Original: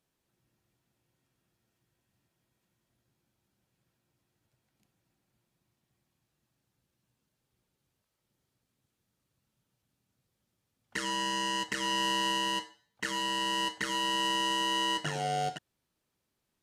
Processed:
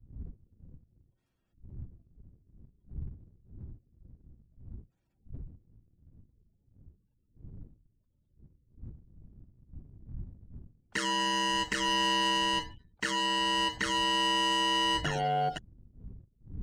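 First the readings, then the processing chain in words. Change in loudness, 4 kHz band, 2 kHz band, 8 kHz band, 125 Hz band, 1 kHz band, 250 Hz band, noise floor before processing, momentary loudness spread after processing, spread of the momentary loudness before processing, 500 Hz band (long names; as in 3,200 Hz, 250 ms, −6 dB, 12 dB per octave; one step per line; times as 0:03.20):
+2.5 dB, +2.5 dB, +2.5 dB, 0.0 dB, +5.0 dB, +2.5 dB, +2.5 dB, −83 dBFS, 20 LU, 8 LU, +2.5 dB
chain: wind on the microphone 100 Hz −52 dBFS
gate on every frequency bin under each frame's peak −25 dB strong
leveller curve on the samples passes 1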